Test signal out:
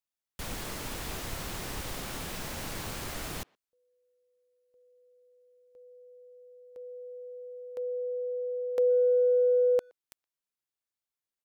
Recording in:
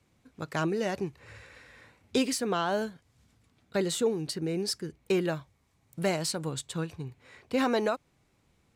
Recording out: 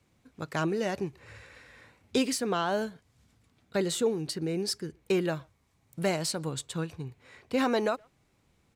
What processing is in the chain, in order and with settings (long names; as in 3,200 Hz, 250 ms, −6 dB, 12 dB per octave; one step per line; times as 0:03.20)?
far-end echo of a speakerphone 120 ms, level −28 dB